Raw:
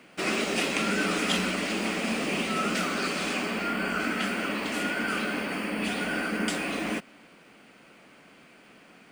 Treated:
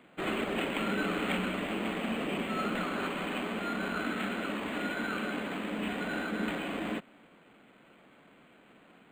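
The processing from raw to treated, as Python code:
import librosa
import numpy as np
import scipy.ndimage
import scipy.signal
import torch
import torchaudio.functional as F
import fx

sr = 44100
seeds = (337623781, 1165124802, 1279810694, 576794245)

y = np.interp(np.arange(len(x)), np.arange(len(x))[::8], x[::8])
y = y * librosa.db_to_amplitude(-3.5)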